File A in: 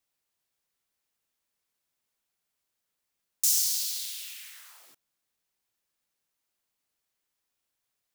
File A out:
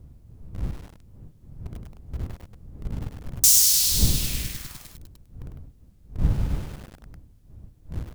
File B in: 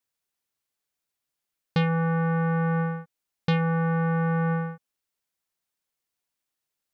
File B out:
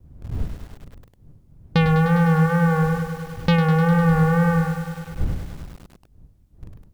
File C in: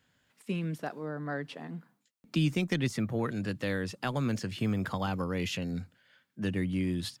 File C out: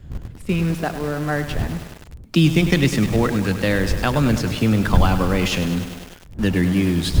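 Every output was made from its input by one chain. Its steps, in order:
wind noise 90 Hz -39 dBFS; in parallel at -12 dB: word length cut 6-bit, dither none; on the sum: wow and flutter 67 cents; bit-crushed delay 101 ms, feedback 80%, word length 7-bit, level -10 dB; normalise loudness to -20 LUFS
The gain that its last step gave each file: +6.5 dB, +3.5 dB, +10.0 dB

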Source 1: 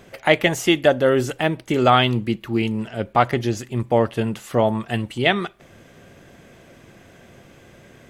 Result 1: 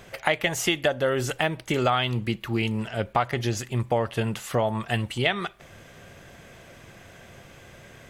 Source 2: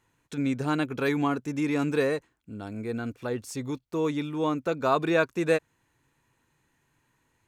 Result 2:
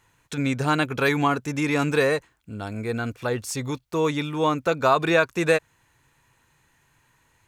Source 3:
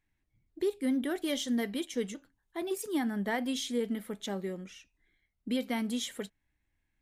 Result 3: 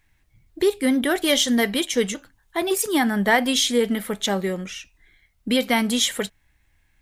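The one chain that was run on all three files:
peaking EQ 280 Hz -7.5 dB 1.6 oct; compression 4:1, threshold -23 dBFS; peak normalisation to -6 dBFS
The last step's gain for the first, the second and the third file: +2.5 dB, +9.0 dB, +16.5 dB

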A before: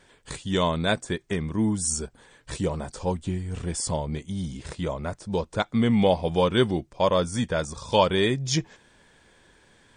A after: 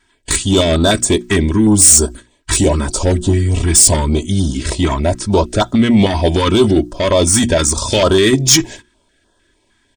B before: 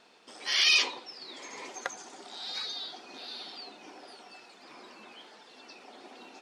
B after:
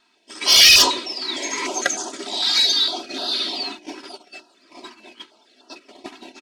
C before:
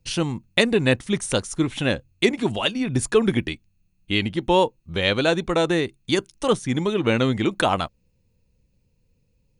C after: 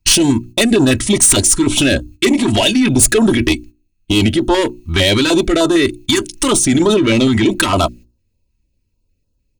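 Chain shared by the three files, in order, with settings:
comb 3.1 ms, depth 65%; gate -46 dBFS, range -20 dB; in parallel at +1 dB: compressor with a negative ratio -24 dBFS, ratio -0.5; on the sum: dynamic bell 8.3 kHz, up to +8 dB, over -39 dBFS, Q 1.2; saturation -14 dBFS; hum notches 60/120/180/240/300/360 Hz; step-sequenced notch 6.6 Hz 550–2200 Hz; peak normalisation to -1.5 dBFS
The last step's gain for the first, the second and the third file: +10.5 dB, +10.0 dB, +8.5 dB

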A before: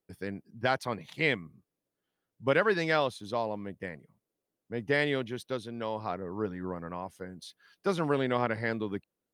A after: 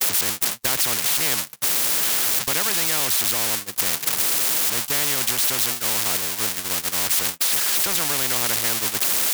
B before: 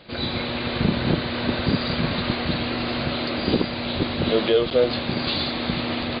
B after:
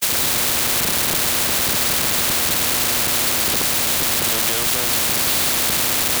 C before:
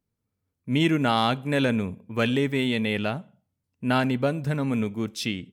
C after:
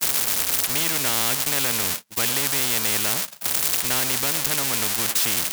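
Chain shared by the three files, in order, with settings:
zero-crossing glitches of -18 dBFS; gate -30 dBFS, range -54 dB; spectrum-flattening compressor 4:1; peak normalisation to -3 dBFS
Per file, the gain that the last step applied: +11.0 dB, +7.0 dB, +6.5 dB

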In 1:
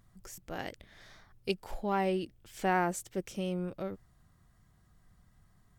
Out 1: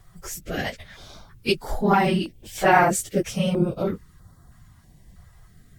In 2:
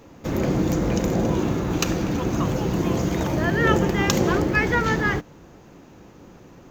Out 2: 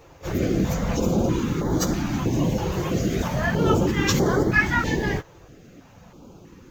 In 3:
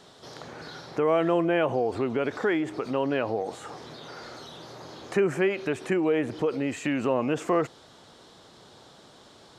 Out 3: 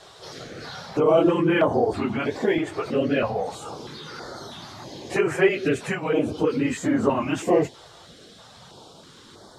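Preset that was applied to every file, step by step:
phase randomisation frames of 50 ms; step-sequenced notch 3.1 Hz 240–2600 Hz; normalise loudness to -23 LUFS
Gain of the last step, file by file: +13.5 dB, +1.0 dB, +6.0 dB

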